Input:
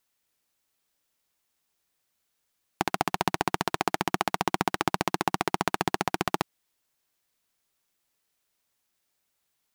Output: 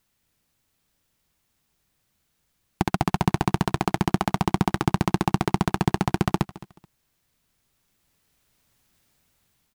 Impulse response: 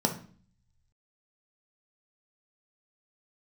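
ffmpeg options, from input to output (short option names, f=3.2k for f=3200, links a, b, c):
-filter_complex "[0:a]bass=f=250:g=13,treble=f=4k:g=-2,asplit=2[a][b];[b]alimiter=limit=-10.5dB:level=0:latency=1:release=208,volume=-2dB[c];[a][c]amix=inputs=2:normalize=0,dynaudnorm=f=640:g=5:m=9.5dB,asoftclip=type=tanh:threshold=-5.5dB,aecho=1:1:215|430:0.119|0.0297"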